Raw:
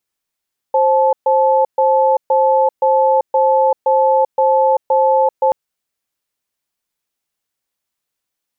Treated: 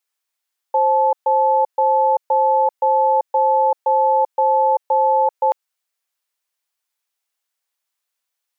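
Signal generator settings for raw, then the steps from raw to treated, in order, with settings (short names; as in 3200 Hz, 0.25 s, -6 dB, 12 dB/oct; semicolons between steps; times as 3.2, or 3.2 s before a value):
cadence 529 Hz, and 867 Hz, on 0.39 s, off 0.13 s, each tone -12.5 dBFS 4.78 s
HPF 650 Hz 12 dB/oct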